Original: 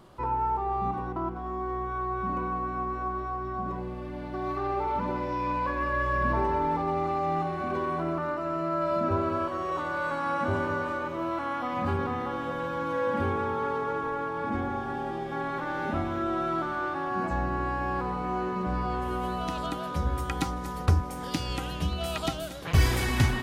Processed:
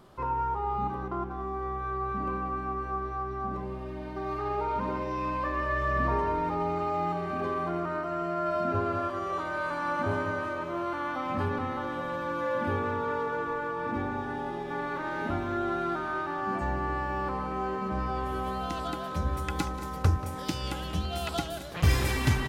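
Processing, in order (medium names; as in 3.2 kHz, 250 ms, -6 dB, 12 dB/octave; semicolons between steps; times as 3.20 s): echo from a far wall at 33 m, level -14 dB; speed mistake 24 fps film run at 25 fps; trim -1.5 dB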